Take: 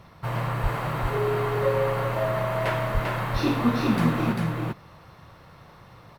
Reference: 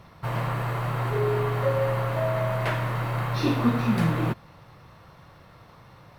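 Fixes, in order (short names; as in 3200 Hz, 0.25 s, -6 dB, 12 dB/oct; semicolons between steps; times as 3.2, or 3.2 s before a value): 0.62–0.74 HPF 140 Hz 24 dB/oct; 2.93–3.05 HPF 140 Hz 24 dB/oct; inverse comb 0.395 s -3.5 dB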